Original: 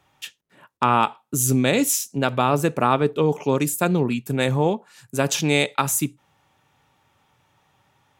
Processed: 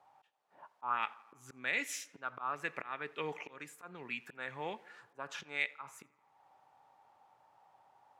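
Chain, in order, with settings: bass shelf 190 Hz +6.5 dB; word length cut 10-bit, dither triangular; slow attack 455 ms; auto-wah 780–2000 Hz, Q 3.5, up, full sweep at -23 dBFS; on a send: tape echo 85 ms, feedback 72%, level -22 dB, low-pass 3.4 kHz; on the sum: trim +3 dB

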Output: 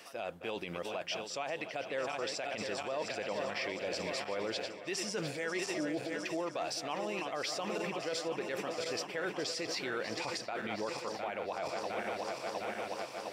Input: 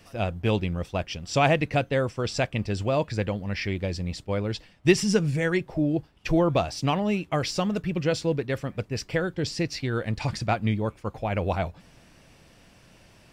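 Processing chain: backward echo that repeats 354 ms, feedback 80%, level -11.5 dB; high-pass 450 Hz 12 dB/octave; reverse; compression 12:1, threshold -34 dBFS, peak gain reduction 17.5 dB; reverse; peak limiter -32 dBFS, peak gain reduction 11.5 dB; trim +5 dB

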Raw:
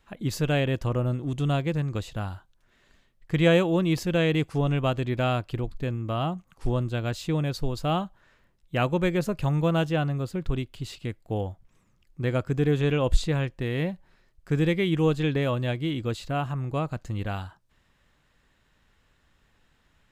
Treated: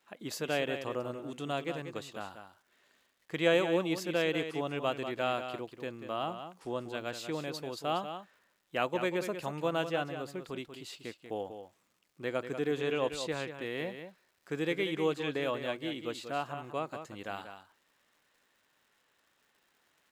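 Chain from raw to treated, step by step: high-pass 340 Hz 12 dB/octave; crackle 260 per s -55 dBFS; on a send: delay 189 ms -9 dB; on the sum: trim -4.5 dB

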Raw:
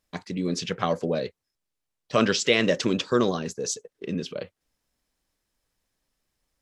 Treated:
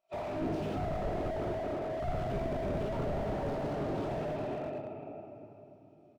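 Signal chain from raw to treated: time-frequency box 2.87–3.87 s, 690–4300 Hz +7 dB; in parallel at +2 dB: compression, threshold -30 dBFS, peak gain reduction 14.5 dB; on the sum: tape speed +7%; vowel filter a; formant-preserving pitch shift -10.5 st; on a send: delay 404 ms -17.5 dB; on the sum: simulated room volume 170 m³, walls hard, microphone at 1.1 m; slew-rate limiter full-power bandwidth 6.3 Hz; trim +5 dB

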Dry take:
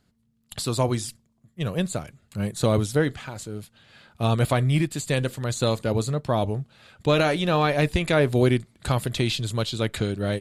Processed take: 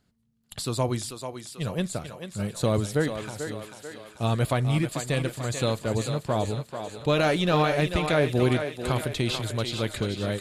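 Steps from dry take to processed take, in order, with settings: 7.23–7.63 s: waveshaping leveller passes 1; on a send: thinning echo 440 ms, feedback 57%, high-pass 310 Hz, level -7 dB; on the sum: trim -3 dB

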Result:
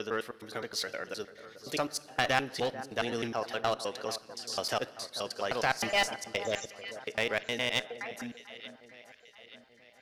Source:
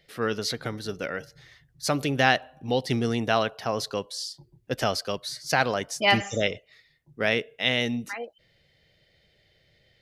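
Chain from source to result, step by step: slices played last to first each 104 ms, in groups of 4; tone controls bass -12 dB, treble +1 dB; echo whose repeats swap between lows and highs 441 ms, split 1.6 kHz, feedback 68%, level -13.5 dB; on a send at -17.5 dB: reverberation RT60 1.4 s, pre-delay 8 ms; on the sum: one-sided clip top -22 dBFS; trim -4.5 dB

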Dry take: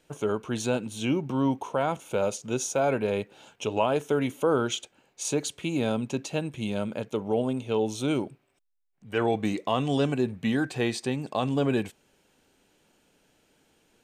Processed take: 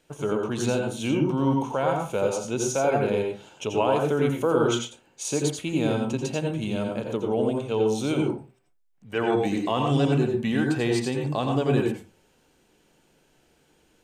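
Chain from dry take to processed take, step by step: on a send: bass shelf 160 Hz +5.5 dB + reverberation RT60 0.30 s, pre-delay 78 ms, DRR 2 dB

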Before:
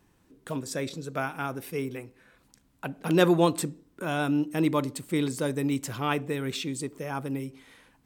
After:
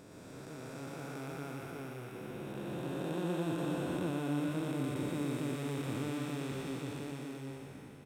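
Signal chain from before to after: spectral blur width 1330 ms; delay 119 ms -3.5 dB; trim -5 dB

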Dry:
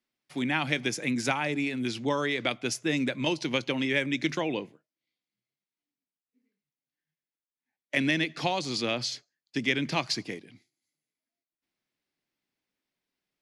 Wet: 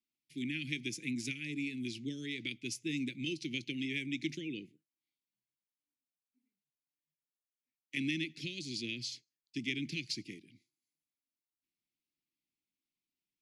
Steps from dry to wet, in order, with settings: elliptic band-stop 340–2300 Hz, stop band 70 dB; trim -7.5 dB

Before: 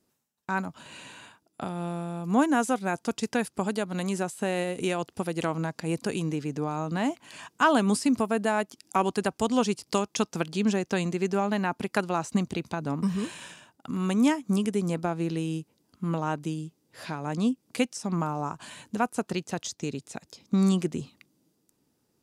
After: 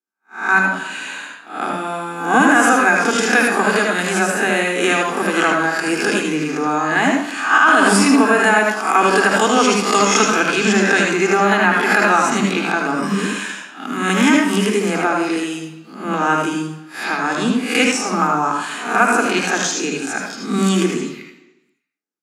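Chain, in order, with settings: reverse spectral sustain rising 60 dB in 0.53 s; expander -45 dBFS; high-pass 210 Hz 24 dB/octave; peaking EQ 1.5 kHz +8.5 dB 0.78 oct; reverberation RT60 1.0 s, pre-delay 71 ms, DRR 1 dB; loudness maximiser +11 dB; trim -2 dB

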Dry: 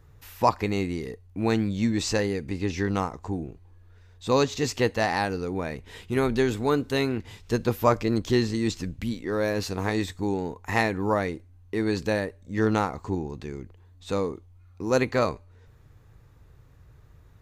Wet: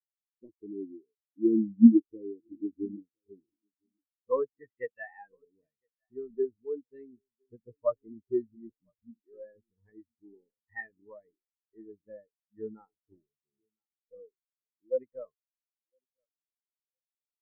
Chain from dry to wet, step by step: partial rectifier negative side -3 dB; treble shelf 2.6 kHz -3 dB; low-pass sweep 350 Hz -> 10 kHz, 3.07–6.11 s; peaking EQ 2 kHz +6.5 dB 1.3 oct; feedback delay 1010 ms, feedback 43%, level -12 dB; spectral contrast expander 4:1

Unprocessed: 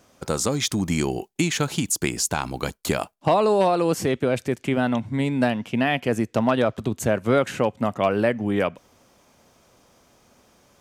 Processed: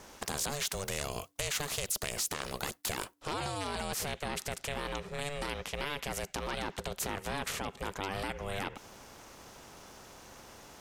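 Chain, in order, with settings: peak limiter -15 dBFS, peak gain reduction 8.5 dB; ring modulator 290 Hz; spectrum-flattening compressor 2:1

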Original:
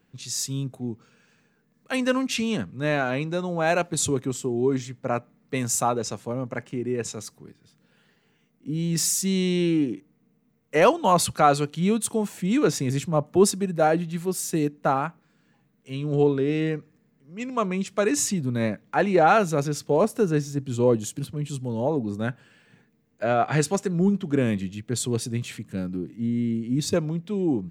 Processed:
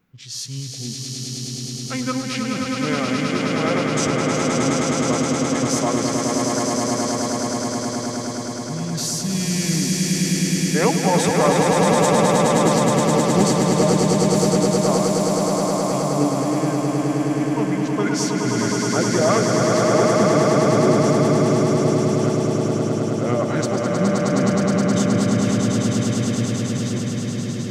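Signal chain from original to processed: fade out at the end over 1.95 s; formant shift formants -3 st; echo with a slow build-up 105 ms, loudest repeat 8, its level -4 dB; trim -1.5 dB

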